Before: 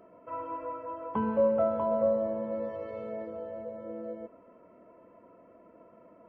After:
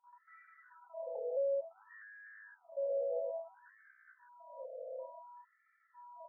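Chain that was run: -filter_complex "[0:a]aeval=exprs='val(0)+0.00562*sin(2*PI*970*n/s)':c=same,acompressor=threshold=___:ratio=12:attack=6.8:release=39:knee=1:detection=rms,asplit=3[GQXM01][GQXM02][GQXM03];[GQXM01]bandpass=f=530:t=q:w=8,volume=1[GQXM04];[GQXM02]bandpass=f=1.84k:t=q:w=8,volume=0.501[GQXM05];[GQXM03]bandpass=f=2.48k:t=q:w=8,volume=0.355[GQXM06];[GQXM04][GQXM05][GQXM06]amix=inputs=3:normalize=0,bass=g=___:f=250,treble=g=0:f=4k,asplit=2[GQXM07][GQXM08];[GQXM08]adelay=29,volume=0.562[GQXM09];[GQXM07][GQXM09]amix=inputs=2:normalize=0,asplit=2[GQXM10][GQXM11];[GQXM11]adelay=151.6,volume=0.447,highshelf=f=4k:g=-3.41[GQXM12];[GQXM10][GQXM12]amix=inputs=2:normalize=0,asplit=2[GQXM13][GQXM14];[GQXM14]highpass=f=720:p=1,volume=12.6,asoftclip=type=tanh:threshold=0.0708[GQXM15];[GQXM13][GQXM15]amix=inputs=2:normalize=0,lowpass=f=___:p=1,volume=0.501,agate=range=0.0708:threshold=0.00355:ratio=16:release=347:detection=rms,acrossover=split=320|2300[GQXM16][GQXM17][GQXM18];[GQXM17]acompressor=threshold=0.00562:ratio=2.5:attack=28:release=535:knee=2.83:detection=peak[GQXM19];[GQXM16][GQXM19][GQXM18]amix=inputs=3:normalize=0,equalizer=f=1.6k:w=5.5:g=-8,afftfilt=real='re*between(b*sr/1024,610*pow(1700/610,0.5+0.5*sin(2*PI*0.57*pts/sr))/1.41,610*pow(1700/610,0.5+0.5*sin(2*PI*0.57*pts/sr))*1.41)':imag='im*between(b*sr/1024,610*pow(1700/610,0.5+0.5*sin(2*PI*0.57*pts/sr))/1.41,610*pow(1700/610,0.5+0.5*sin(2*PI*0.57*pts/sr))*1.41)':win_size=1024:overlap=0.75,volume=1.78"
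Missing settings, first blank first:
0.0316, 12, 1.1k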